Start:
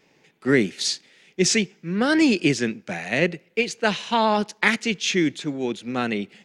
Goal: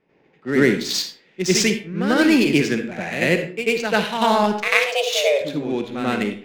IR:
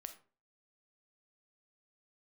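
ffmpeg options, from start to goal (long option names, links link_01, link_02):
-filter_complex "[0:a]adynamicsmooth=sensitivity=4.5:basefreq=2000,asettb=1/sr,asplit=3[link_01][link_02][link_03];[link_01]atrim=end=4.504[link_04];[link_02]atrim=start=4.5:end=5.32,asetpts=PTS-STARTPTS,afade=type=in:duration=0.004:curve=qsin,afade=type=out:start_time=0.816:duration=0.004:curve=qsin,afreqshift=270[link_05];[link_03]atrim=start=5.316[link_06];[link_04][link_05]acrossfade=duration=0.004:curve1=hsin:curve2=qsin[link_07];[link_07][link_06]acrossfade=duration=0.004:curve1=qsin:curve2=hsin,asplit=2[link_08][link_09];[1:a]atrim=start_sample=2205,asetrate=33516,aresample=44100,adelay=92[link_10];[link_09][link_10]afir=irnorm=-1:irlink=0,volume=11dB[link_11];[link_08][link_11]amix=inputs=2:normalize=0,volume=-5dB"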